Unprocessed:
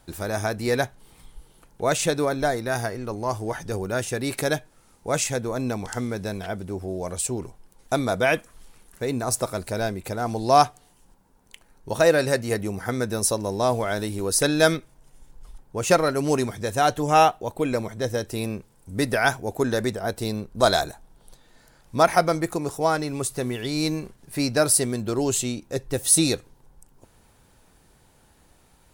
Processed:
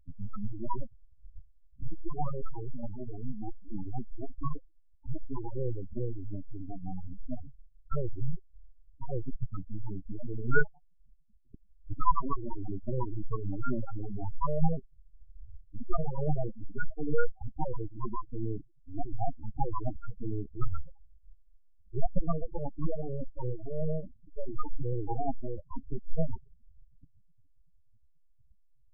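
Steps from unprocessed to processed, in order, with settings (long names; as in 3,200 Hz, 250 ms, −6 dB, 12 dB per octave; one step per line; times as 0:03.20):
full-wave rectification
dynamic equaliser 1,900 Hz, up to −8 dB, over −48 dBFS, Q 7.1
gate on every frequency bin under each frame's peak −15 dB strong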